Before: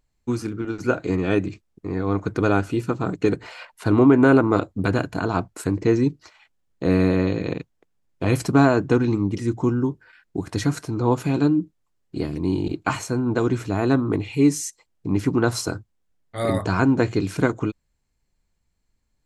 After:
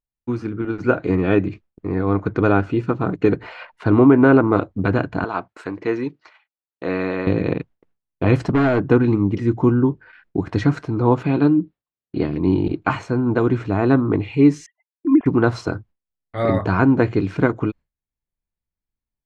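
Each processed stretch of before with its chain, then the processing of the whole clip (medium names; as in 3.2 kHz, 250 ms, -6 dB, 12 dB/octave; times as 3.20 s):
5.24–7.27 s: high-pass 940 Hz 6 dB/octave + treble shelf 6.6 kHz -6 dB
8.36–8.91 s: band-stop 2.3 kHz, Q 9.6 + overload inside the chain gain 17 dB
11.23–12.47 s: high-pass 100 Hz 6 dB/octave + resonant high shelf 5.3 kHz -6.5 dB, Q 1.5
14.66–15.26 s: formants replaced by sine waves + low-pass 2 kHz + comb 2.9 ms, depth 75%
whole clip: level rider gain up to 6 dB; low-pass 2.6 kHz 12 dB/octave; gate with hold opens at -40 dBFS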